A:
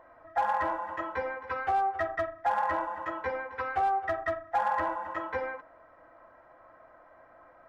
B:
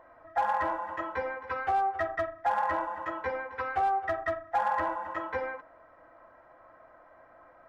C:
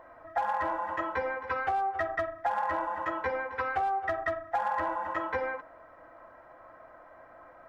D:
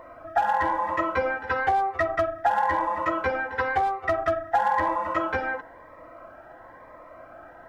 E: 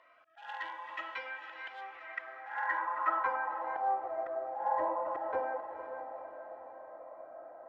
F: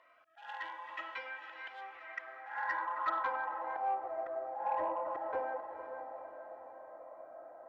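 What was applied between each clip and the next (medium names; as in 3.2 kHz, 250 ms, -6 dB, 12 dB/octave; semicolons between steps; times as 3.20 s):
no audible change
compression, threshold -30 dBFS, peak gain reduction 7 dB; trim +3.5 dB
Shepard-style phaser rising 0.99 Hz; trim +9 dB
slow attack 176 ms; echo that smears into a reverb 487 ms, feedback 50%, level -8 dB; band-pass sweep 3 kHz -> 610 Hz, 1.79–4.18 s; trim -1.5 dB
saturation -21 dBFS, distortion -24 dB; trim -2 dB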